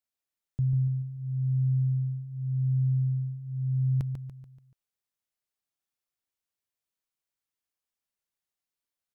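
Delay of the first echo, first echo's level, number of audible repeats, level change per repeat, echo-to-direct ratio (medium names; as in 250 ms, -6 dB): 144 ms, -7.0 dB, 4, -7.0 dB, -6.0 dB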